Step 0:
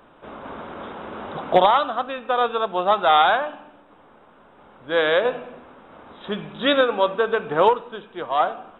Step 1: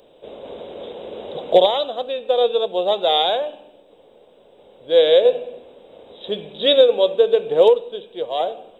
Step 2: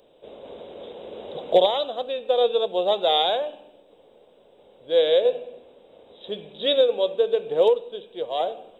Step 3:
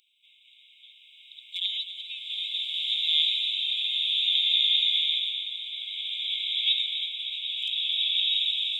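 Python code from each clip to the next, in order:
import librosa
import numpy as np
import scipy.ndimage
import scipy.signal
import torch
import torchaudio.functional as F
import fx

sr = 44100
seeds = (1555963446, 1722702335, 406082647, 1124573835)

y1 = fx.curve_eq(x, sr, hz=(280.0, 490.0, 1300.0, 3900.0), db=(0, 14, -13, 14))
y1 = F.gain(torch.from_numpy(y1), -5.0).numpy()
y2 = fx.rider(y1, sr, range_db=4, speed_s=2.0)
y2 = F.gain(torch.from_numpy(y2), -4.0).numpy()
y3 = fx.brickwall_highpass(y2, sr, low_hz=2100.0)
y3 = y3 + 10.0 ** (-12.0 / 20.0) * np.pad(y3, (int(253 * sr / 1000.0), 0))[:len(y3)]
y3 = fx.rev_bloom(y3, sr, seeds[0], attack_ms=1640, drr_db=-6.5)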